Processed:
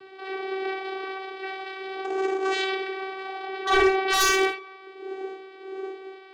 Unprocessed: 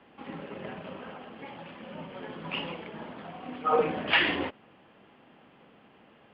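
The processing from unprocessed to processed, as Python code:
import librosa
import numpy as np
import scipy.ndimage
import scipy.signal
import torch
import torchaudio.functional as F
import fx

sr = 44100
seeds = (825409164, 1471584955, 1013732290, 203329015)

y = fx.dmg_wind(x, sr, seeds[0], corner_hz=140.0, level_db=-36.0)
y = fx.tilt_shelf(y, sr, db=-8.0, hz=1100.0)
y = fx.schmitt(y, sr, flips_db=-43.0, at=(2.04, 2.61))
y = fx.vocoder(y, sr, bands=8, carrier='saw', carrier_hz=383.0)
y = 10.0 ** (-24.0 / 20.0) * (np.abs((y / 10.0 ** (-24.0 / 20.0) + 3.0) % 4.0 - 2.0) - 1.0)
y = fx.air_absorb(y, sr, metres=54.0, at=(3.45, 4.19), fade=0.02)
y = fx.echo_banded(y, sr, ms=134, feedback_pct=60, hz=1200.0, wet_db=-21)
y = fx.rev_gated(y, sr, seeds[1], gate_ms=100, shape='flat', drr_db=3.5)
y = fx.attack_slew(y, sr, db_per_s=160.0)
y = y * librosa.db_to_amplitude(8.0)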